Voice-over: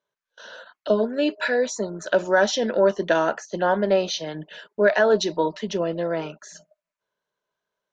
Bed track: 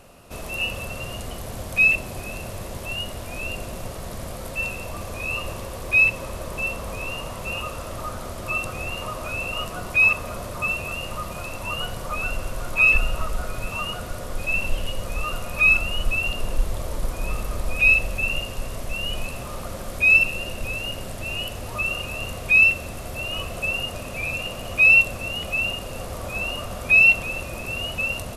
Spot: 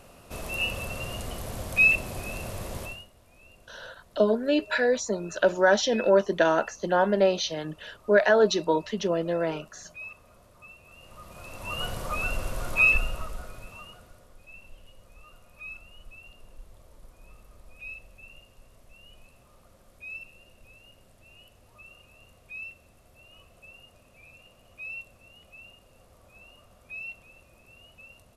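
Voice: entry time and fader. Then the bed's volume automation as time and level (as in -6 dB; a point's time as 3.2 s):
3.30 s, -1.5 dB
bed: 2.83 s -2.5 dB
3.1 s -24.5 dB
10.81 s -24.5 dB
11.86 s -2.5 dB
12.78 s -2.5 dB
14.4 s -25 dB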